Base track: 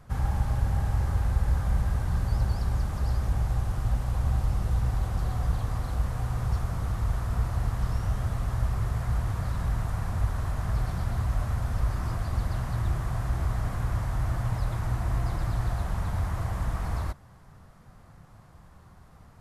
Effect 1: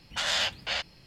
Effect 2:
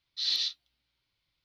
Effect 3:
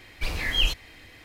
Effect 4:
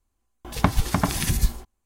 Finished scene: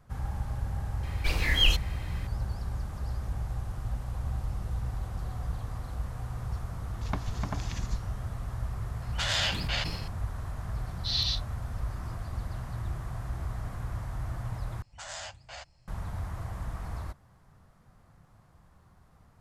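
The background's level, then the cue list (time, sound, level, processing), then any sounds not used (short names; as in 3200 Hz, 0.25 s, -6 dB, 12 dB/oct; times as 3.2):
base track -7 dB
1.03 add 3
6.49 add 4 -14 dB + downsampling 16000 Hz
9.02 add 1 -1.5 dB + sustainer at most 48 dB/s
10.87 add 2 -0.5 dB + companded quantiser 8-bit
14.82 replace with 1 -3 dB + EQ curve 120 Hz 0 dB, 180 Hz -14 dB, 440 Hz -16 dB, 640 Hz -3 dB, 2400 Hz -13 dB, 3500 Hz -17 dB, 7800 Hz -1 dB, 14000 Hz -28 dB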